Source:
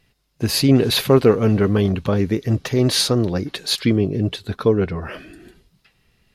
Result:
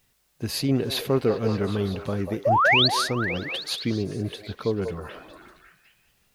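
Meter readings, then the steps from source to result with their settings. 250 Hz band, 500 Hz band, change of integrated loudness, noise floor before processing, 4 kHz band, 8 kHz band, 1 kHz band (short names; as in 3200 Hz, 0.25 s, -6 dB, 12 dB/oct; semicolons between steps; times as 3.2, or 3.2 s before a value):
-9.0 dB, -7.0 dB, -5.5 dB, -65 dBFS, -3.0 dB, -9.0 dB, +5.0 dB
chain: painted sound rise, 2.45–2.88, 520–4700 Hz -10 dBFS; requantised 10-bit, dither triangular; delay with a stepping band-pass 0.191 s, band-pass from 650 Hz, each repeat 0.7 oct, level -3 dB; gain -9 dB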